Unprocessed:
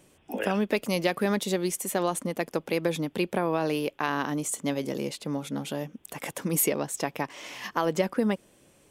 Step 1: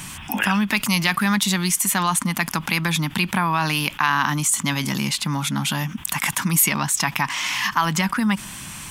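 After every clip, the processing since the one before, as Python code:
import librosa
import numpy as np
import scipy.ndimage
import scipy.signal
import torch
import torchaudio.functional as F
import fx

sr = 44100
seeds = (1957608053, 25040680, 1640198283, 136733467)

y = fx.curve_eq(x, sr, hz=(200.0, 490.0, 950.0), db=(0, -25, 3))
y = fx.env_flatten(y, sr, amount_pct=50)
y = y * 10.0 ** (4.5 / 20.0)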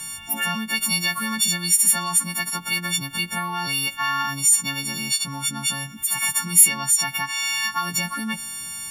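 y = fx.freq_snap(x, sr, grid_st=4)
y = y * 10.0 ** (-9.0 / 20.0)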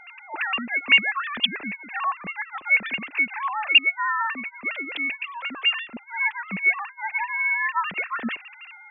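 y = fx.sine_speech(x, sr)
y = y * 10.0 ** (-2.5 / 20.0)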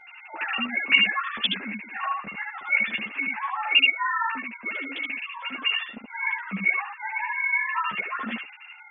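y = x + 10.0 ** (-3.5 / 20.0) * np.pad(x, (int(74 * sr / 1000.0), 0))[:len(x)]
y = fx.ensemble(y, sr)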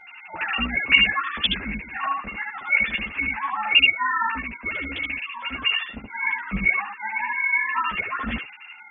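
y = fx.octave_divider(x, sr, octaves=2, level_db=-1.0)
y = y * 10.0 ** (2.5 / 20.0)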